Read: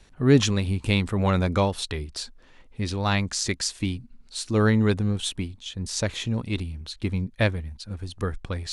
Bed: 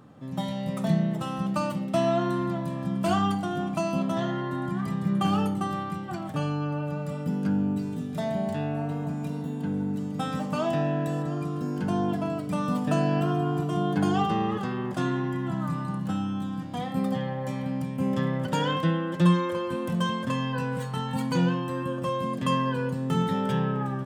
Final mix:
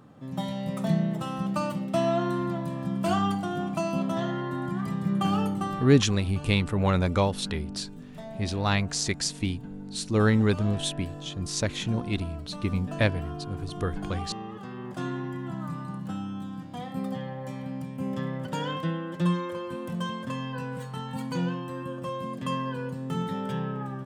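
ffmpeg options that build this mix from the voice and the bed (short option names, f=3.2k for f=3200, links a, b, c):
-filter_complex "[0:a]adelay=5600,volume=-1.5dB[a];[1:a]volume=5.5dB,afade=t=out:st=5.7:d=0.4:silence=0.298538,afade=t=in:st=14.54:d=0.51:silence=0.473151[b];[a][b]amix=inputs=2:normalize=0"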